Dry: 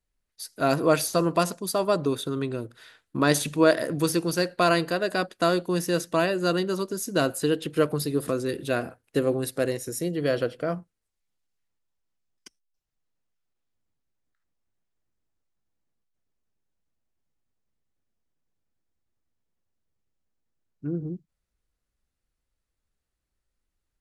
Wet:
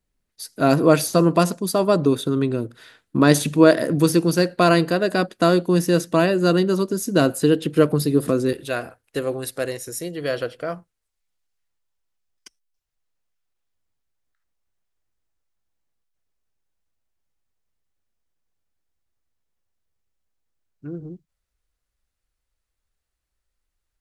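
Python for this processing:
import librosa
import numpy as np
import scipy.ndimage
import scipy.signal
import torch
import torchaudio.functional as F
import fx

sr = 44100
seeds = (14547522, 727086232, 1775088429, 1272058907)

y = fx.peak_eq(x, sr, hz=210.0, db=fx.steps((0.0, 6.5), (8.53, -7.5)), octaves=2.1)
y = F.gain(torch.from_numpy(y), 3.0).numpy()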